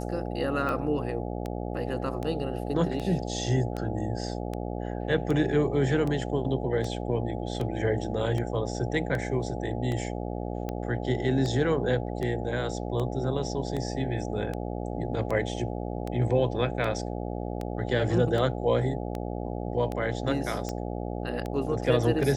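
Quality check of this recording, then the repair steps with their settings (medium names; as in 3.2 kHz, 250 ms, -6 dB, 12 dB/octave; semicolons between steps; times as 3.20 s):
buzz 60 Hz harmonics 14 -33 dBFS
tick 78 rpm -20 dBFS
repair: de-click; de-hum 60 Hz, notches 14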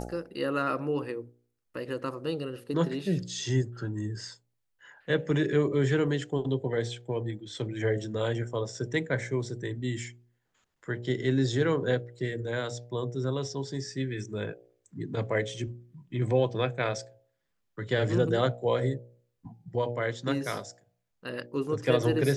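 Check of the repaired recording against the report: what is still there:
nothing left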